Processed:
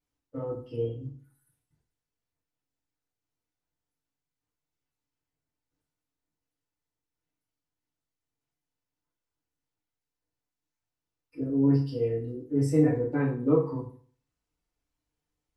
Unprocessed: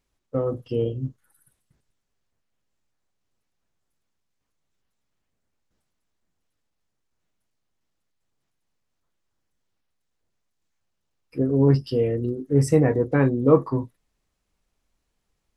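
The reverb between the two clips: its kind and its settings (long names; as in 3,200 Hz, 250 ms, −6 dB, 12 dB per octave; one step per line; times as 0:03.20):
feedback delay network reverb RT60 0.46 s, low-frequency decay 1.05×, high-frequency decay 0.8×, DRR −6.5 dB
level −16.5 dB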